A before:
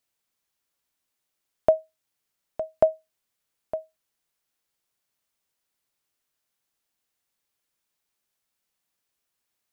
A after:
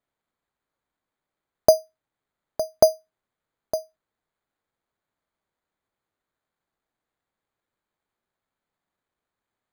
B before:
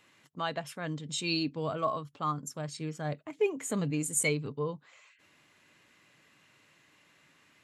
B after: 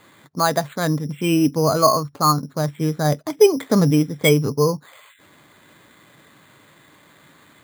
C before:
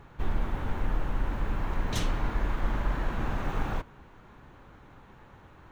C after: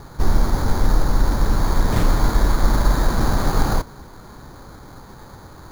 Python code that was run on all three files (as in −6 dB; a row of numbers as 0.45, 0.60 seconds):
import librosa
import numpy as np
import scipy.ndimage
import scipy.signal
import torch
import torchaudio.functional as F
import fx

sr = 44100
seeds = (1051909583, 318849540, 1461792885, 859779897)

y = scipy.signal.sosfilt(scipy.signal.butter(2, 1900.0, 'lowpass', fs=sr, output='sos'), x)
y = np.repeat(scipy.signal.resample_poly(y, 1, 8), 8)[:len(y)]
y = y * 10.0 ** (-3 / 20.0) / np.max(np.abs(y))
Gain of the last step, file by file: +4.5, +15.5, +12.0 decibels